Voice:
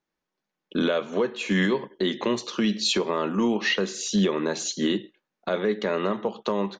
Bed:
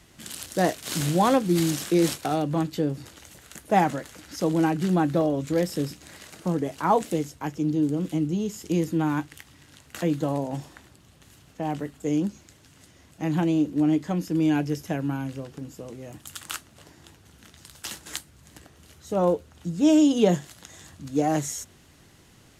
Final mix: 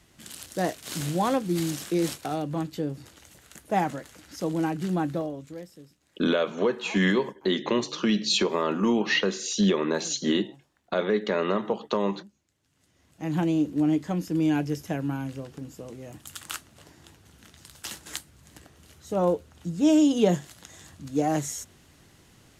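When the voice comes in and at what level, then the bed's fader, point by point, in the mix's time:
5.45 s, 0.0 dB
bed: 0:05.09 −4.5 dB
0:05.84 −22.5 dB
0:12.48 −22.5 dB
0:13.37 −1.5 dB

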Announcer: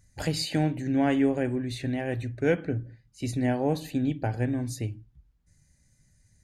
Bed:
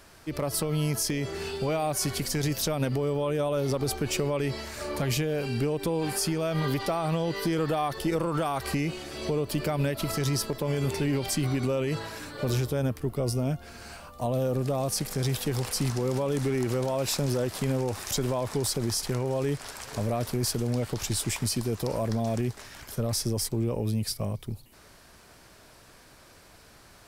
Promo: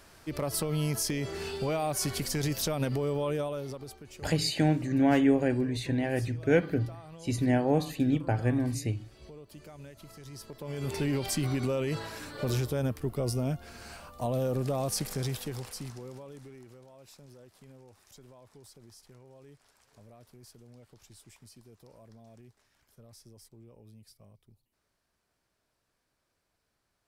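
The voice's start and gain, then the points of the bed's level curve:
4.05 s, +0.5 dB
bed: 0:03.33 −2.5 dB
0:04.06 −20.5 dB
0:10.25 −20.5 dB
0:11.00 −2.5 dB
0:15.08 −2.5 dB
0:16.82 −26 dB

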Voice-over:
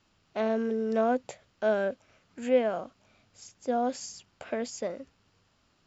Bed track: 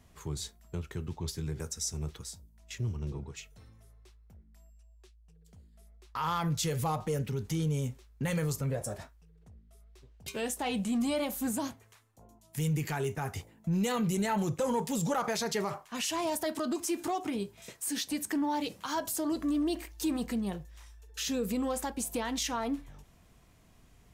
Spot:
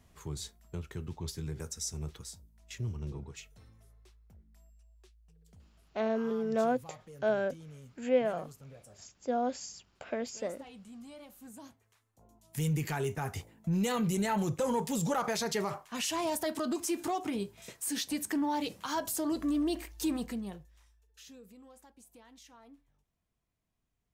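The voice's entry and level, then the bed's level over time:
5.60 s, −3.0 dB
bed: 0:05.63 −2.5 dB
0:06.15 −19 dB
0:11.42 −19 dB
0:12.52 −0.5 dB
0:20.09 −0.5 dB
0:21.54 −23.5 dB

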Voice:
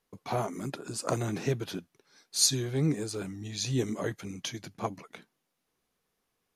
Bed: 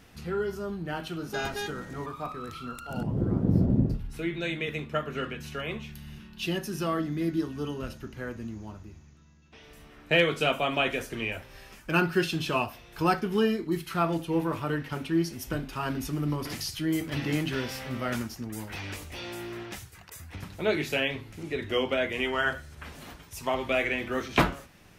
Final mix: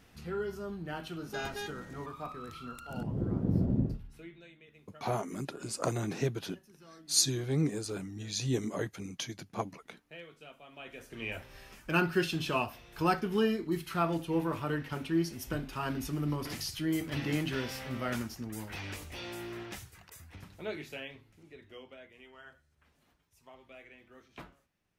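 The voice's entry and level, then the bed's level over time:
4.75 s, −2.0 dB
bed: 0:03.85 −5.5 dB
0:04.56 −26 dB
0:10.67 −26 dB
0:11.35 −3.5 dB
0:19.80 −3.5 dB
0:22.15 −26 dB

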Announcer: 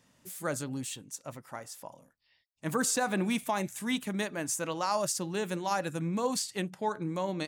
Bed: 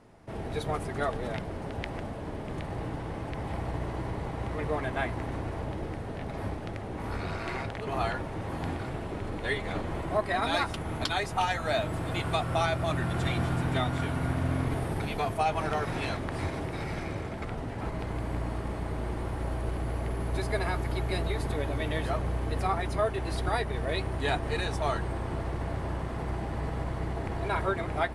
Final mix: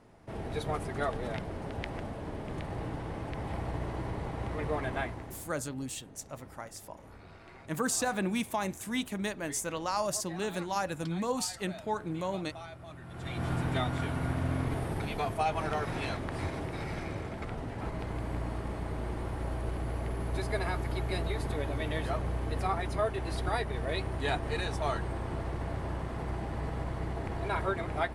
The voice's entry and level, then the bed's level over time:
5.05 s, −1.5 dB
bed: 0:04.96 −2 dB
0:05.57 −18 dB
0:13.02 −18 dB
0:13.50 −2.5 dB

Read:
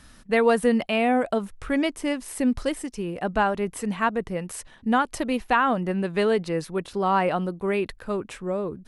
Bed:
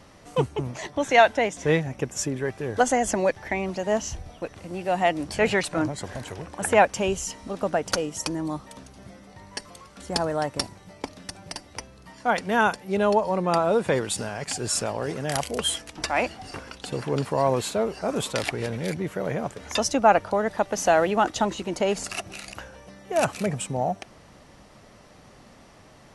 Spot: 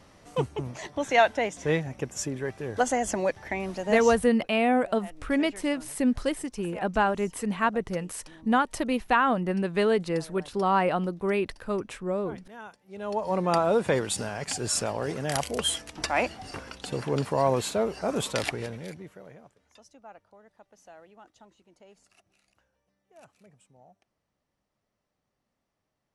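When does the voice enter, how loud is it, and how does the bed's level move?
3.60 s, −1.5 dB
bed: 0:04.14 −4 dB
0:04.40 −23 dB
0:12.81 −23 dB
0:13.33 −1.5 dB
0:18.47 −1.5 dB
0:19.77 −31 dB

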